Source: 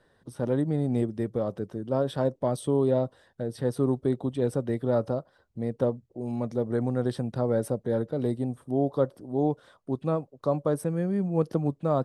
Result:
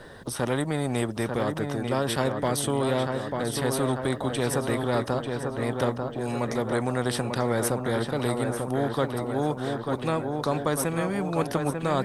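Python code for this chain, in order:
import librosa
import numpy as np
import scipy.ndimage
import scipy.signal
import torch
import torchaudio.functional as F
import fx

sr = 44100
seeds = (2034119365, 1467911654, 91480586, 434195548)

y = fx.dynamic_eq(x, sr, hz=4700.0, q=1.1, threshold_db=-55.0, ratio=4.0, max_db=-5)
y = fx.echo_filtered(y, sr, ms=893, feedback_pct=52, hz=4300.0, wet_db=-8)
y = fx.spectral_comp(y, sr, ratio=2.0)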